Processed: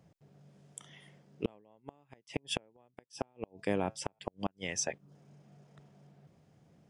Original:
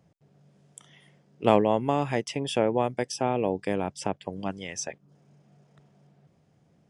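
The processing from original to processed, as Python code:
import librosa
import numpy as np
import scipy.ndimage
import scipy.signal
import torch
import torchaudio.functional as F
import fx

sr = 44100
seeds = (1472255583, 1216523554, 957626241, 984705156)

y = fx.comb_fb(x, sr, f0_hz=110.0, decay_s=0.22, harmonics='all', damping=0.0, mix_pct=40, at=(3.04, 4.19))
y = fx.gate_flip(y, sr, shuts_db=-17.0, range_db=-39)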